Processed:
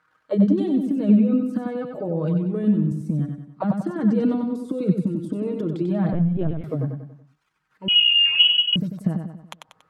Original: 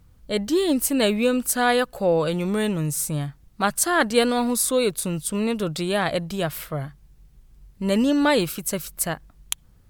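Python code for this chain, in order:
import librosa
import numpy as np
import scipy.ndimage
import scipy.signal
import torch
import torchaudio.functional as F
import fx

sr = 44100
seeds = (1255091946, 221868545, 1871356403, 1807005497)

p1 = fx.highpass(x, sr, hz=140.0, slope=6)
p2 = fx.dereverb_blind(p1, sr, rt60_s=1.0)
p3 = p2 + 0.69 * np.pad(p2, (int(6.4 * sr / 1000.0), 0))[:len(p2)]
p4 = fx.transient(p3, sr, attack_db=-1, sustain_db=12)
p5 = fx.rider(p4, sr, range_db=4, speed_s=2.0)
p6 = fx.auto_wah(p5, sr, base_hz=200.0, top_hz=1500.0, q=3.5, full_db=-18.5, direction='down')
p7 = p6 + fx.echo_feedback(p6, sr, ms=94, feedback_pct=45, wet_db=-5.5, dry=0)
p8 = fx.lpc_vocoder(p7, sr, seeds[0], excitation='pitch_kept', order=16, at=(6.13, 6.64))
p9 = fx.freq_invert(p8, sr, carrier_hz=3100, at=(7.88, 8.76))
y = p9 * librosa.db_to_amplitude(7.0)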